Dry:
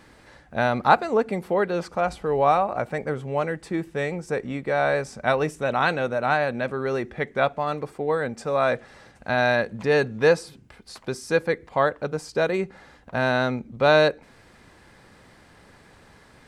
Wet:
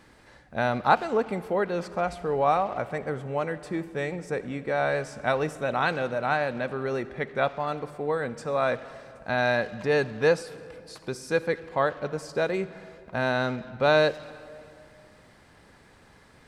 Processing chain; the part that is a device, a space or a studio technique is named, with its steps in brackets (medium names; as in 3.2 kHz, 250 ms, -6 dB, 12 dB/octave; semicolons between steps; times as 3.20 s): saturated reverb return (on a send at -12 dB: reverberation RT60 2.0 s, pre-delay 50 ms + saturation -23 dBFS, distortion -9 dB); on the sum: trim -3.5 dB